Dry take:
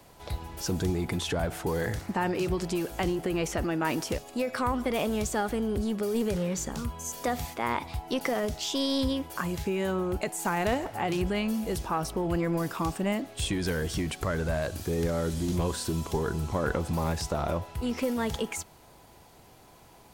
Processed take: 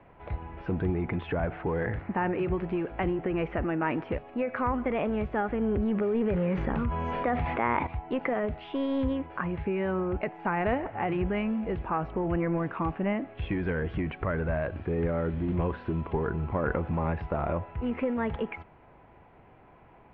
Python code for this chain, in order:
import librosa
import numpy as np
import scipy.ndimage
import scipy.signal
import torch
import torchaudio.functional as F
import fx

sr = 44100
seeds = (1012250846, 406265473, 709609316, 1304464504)

y = scipy.signal.sosfilt(scipy.signal.butter(6, 2500.0, 'lowpass', fs=sr, output='sos'), x)
y = fx.env_flatten(y, sr, amount_pct=70, at=(5.61, 7.87))